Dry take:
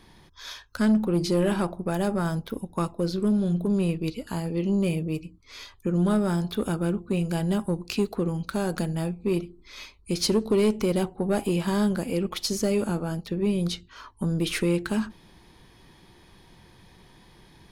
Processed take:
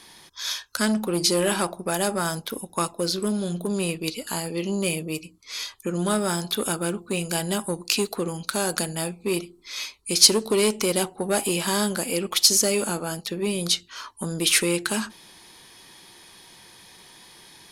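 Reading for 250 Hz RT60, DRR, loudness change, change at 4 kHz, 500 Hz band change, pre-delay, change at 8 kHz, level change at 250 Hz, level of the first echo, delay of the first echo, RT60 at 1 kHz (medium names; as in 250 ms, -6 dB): no reverb, no reverb, +2.5 dB, +11.5 dB, +1.0 dB, no reverb, +15.0 dB, -3.0 dB, no echo, no echo, no reverb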